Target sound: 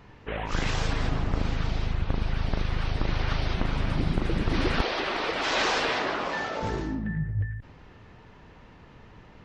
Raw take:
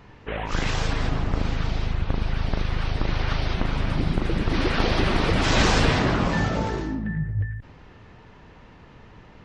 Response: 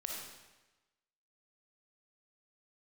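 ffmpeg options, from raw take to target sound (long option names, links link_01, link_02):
-filter_complex "[0:a]asettb=1/sr,asplit=3[link_01][link_02][link_03];[link_01]atrim=end=4.814[link_04];[link_02]atrim=start=4.81:end=6.63,asetpts=PTS-STARTPTS,afade=type=in:duration=0.004:curve=qsin,afade=type=out:start_time=1.816:duration=0.004:curve=qsin,acrossover=split=340 6700:gain=0.0708 1 0.141[link_05][link_06][link_07];[link_05][link_06][link_07]amix=inputs=3:normalize=0[link_08];[link_03]atrim=start=6.626[link_09];[link_04][link_08]acrossfade=duration=0.004:curve1=hsin:curve2=qsin[link_10];[link_10][link_09]acrossfade=duration=0.004:curve1=qsin:curve2=hsin,volume=-2.5dB"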